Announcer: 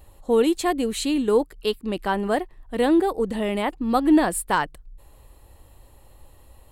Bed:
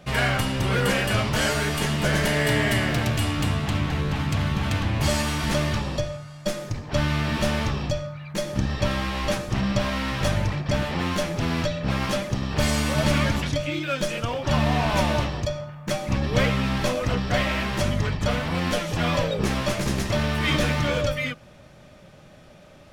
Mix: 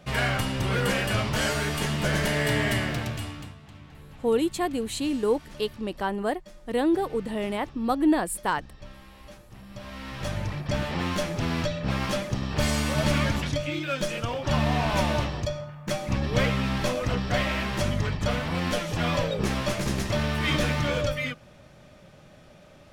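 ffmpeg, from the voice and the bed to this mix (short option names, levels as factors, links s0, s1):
-filter_complex "[0:a]adelay=3950,volume=0.596[s0];[1:a]volume=7.08,afade=t=out:st=2.71:d=0.84:silence=0.105925,afade=t=in:st=9.68:d=1.25:silence=0.1[s1];[s0][s1]amix=inputs=2:normalize=0"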